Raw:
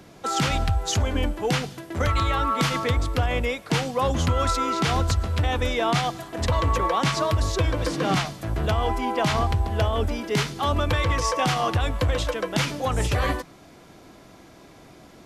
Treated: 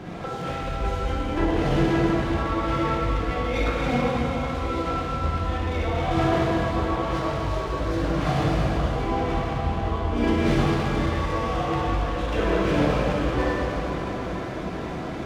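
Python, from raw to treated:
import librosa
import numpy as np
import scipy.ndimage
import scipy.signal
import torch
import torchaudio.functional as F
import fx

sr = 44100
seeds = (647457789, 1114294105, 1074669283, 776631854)

y = fx.peak_eq(x, sr, hz=6900.0, db=11.5, octaves=0.46)
y = fx.over_compress(y, sr, threshold_db=-33.0, ratio=-1.0)
y = fx.air_absorb(y, sr, metres=300.0)
y = fx.rev_plate(y, sr, seeds[0], rt60_s=4.6, hf_ratio=1.0, predelay_ms=0, drr_db=-9.0)
y = fx.running_max(y, sr, window=3)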